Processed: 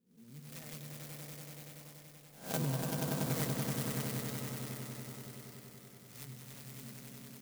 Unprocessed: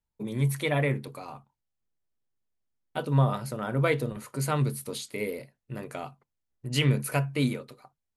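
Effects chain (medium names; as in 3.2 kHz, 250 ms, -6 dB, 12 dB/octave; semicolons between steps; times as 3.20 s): reverse spectral sustain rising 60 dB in 0.59 s; Doppler pass-by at 2.90 s, 21 m/s, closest 2.4 m; low-pass 2.8 kHz 24 dB/octave; high-order bell 620 Hz -13.5 dB 2.8 oct; hum notches 50/100/150/200 Hz; compression 4:1, threshold -39 dBFS, peak gain reduction 14 dB; resonant low shelf 150 Hz -8.5 dB, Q 1.5; tempo 1.1×; echo with a slow build-up 95 ms, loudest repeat 5, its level -4.5 dB; sampling jitter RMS 0.13 ms; trim +9 dB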